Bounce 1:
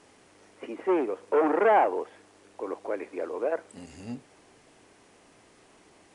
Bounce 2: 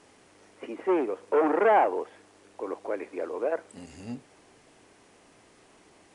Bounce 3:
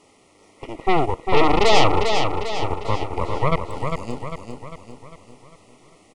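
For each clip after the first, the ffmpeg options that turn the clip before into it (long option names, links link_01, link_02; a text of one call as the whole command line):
ffmpeg -i in.wav -af anull out.wav
ffmpeg -i in.wav -af "aeval=exprs='0.282*(cos(1*acos(clip(val(0)/0.282,-1,1)))-cos(1*PI/2))+0.112*(cos(8*acos(clip(val(0)/0.282,-1,1)))-cos(8*PI/2))':channel_layout=same,asuperstop=centerf=1600:order=8:qfactor=3.3,aecho=1:1:400|800|1200|1600|2000|2400:0.531|0.265|0.133|0.0664|0.0332|0.0166,volume=2.5dB" out.wav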